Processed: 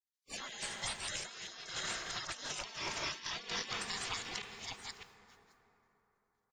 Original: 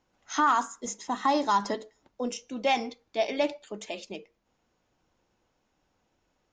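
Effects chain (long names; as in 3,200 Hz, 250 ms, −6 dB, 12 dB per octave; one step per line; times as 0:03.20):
delay that plays each chunk backwards 491 ms, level −3 dB
single-tap delay 612 ms −21.5 dB
downward expander −57 dBFS
gate on every frequency bin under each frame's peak −25 dB weak
dense smooth reverb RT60 3.9 s, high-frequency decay 0.45×, DRR 13 dB
compressor whose output falls as the input rises −53 dBFS, ratio −1
level +10 dB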